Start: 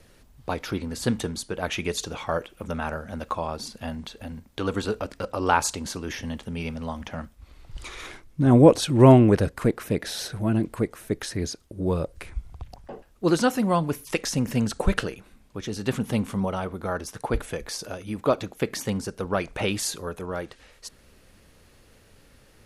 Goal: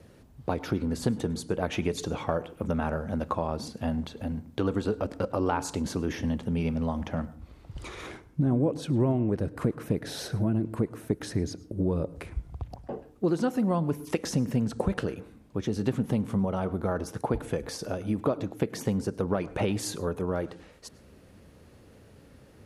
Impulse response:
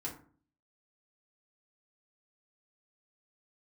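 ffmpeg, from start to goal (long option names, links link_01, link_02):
-filter_complex "[0:a]highpass=73,tiltshelf=frequency=970:gain=6,acompressor=threshold=-23dB:ratio=6,asplit=2[link_01][link_02];[1:a]atrim=start_sample=2205,adelay=101[link_03];[link_02][link_03]afir=irnorm=-1:irlink=0,volume=-19dB[link_04];[link_01][link_04]amix=inputs=2:normalize=0"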